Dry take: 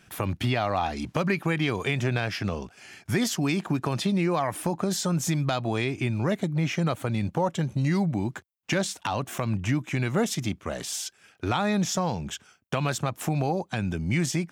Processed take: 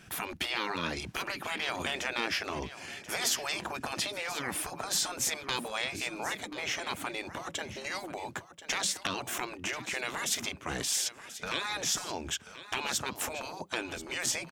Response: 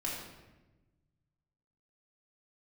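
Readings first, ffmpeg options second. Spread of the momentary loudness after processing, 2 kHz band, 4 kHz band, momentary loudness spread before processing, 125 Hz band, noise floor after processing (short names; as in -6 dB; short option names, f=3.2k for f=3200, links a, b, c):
7 LU, -1.0 dB, +1.5 dB, 7 LU, -21.5 dB, -51 dBFS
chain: -af "afftfilt=real='re*lt(hypot(re,im),0.1)':imag='im*lt(hypot(re,im),0.1)':win_size=1024:overlap=0.75,aecho=1:1:1035:0.2,volume=2.5dB"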